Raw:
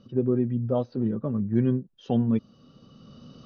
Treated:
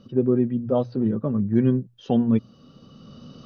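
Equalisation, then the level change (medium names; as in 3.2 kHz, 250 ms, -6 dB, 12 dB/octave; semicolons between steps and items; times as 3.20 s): hum notches 60/120 Hz; +4.0 dB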